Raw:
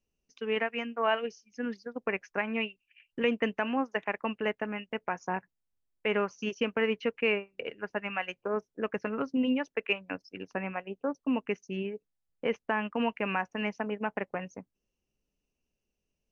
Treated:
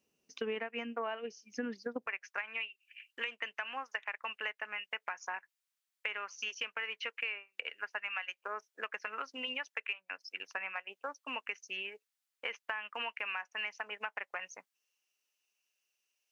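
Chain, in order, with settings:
high-pass filter 190 Hz 12 dB per octave, from 0:02.07 1,400 Hz
downward compressor 10 to 1, threshold −42 dBFS, peak gain reduction 20 dB
level +7.5 dB

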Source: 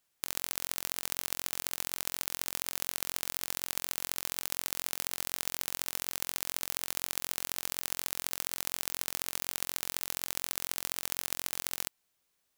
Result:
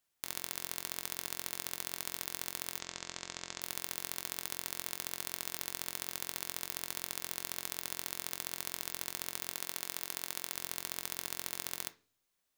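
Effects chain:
0:02.78–0:03.61: Butterworth low-pass 7,900 Hz 96 dB per octave
0:09.53–0:10.55: low-shelf EQ 120 Hz −8 dB
on a send: convolution reverb RT60 0.40 s, pre-delay 3 ms, DRR 9 dB
on the sum: level −4.5 dB

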